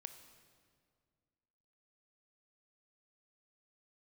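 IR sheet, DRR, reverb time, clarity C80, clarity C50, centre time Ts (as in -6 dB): 8.5 dB, 2.0 s, 10.5 dB, 9.5 dB, 20 ms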